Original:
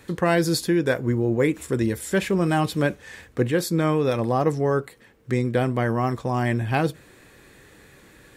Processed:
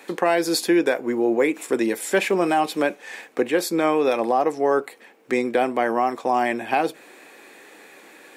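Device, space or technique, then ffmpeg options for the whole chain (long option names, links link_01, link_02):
laptop speaker: -af "highpass=frequency=260:width=0.5412,highpass=frequency=260:width=1.3066,equalizer=frequency=770:width_type=o:width=0.58:gain=7.5,equalizer=frequency=2400:width_type=o:width=0.34:gain=6,alimiter=limit=-13dB:level=0:latency=1:release=276,volume=3.5dB"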